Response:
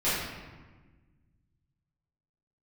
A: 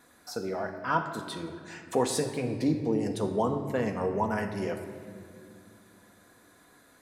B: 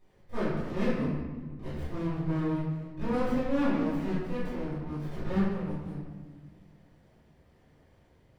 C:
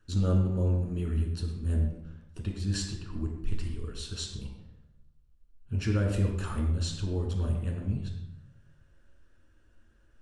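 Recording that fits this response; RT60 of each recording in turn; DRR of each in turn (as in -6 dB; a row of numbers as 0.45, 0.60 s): B; not exponential, 1.3 s, 0.80 s; 4.5, -13.0, 0.5 dB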